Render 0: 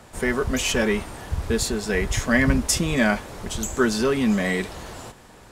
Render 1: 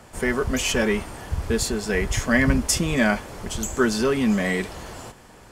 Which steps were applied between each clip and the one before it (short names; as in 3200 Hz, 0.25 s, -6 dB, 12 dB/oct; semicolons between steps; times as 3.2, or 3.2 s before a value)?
notch 3800 Hz, Q 14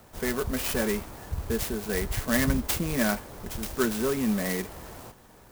clock jitter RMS 0.073 ms; gain -5.5 dB